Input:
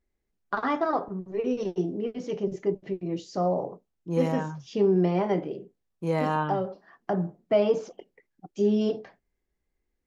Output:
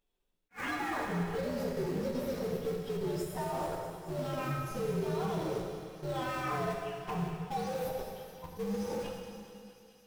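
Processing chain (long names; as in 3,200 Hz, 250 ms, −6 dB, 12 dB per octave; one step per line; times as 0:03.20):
partials spread apart or drawn together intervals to 124%
low-shelf EQ 470 Hz −7.5 dB
notch filter 1,100 Hz, Q 18
reversed playback
downward compressor 6 to 1, threshold −38 dBFS, peak gain reduction 15.5 dB
reversed playback
brickwall limiter −37.5 dBFS, peak gain reduction 9 dB
delay with a high-pass on its return 215 ms, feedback 84%, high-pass 2,200 Hz, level −12 dB
in parallel at −5 dB: comparator with hysteresis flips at −46.5 dBFS
on the sum: dense smooth reverb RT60 2.3 s, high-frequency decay 1×, DRR 0.5 dB
level that may rise only so fast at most 380 dB per second
level +6 dB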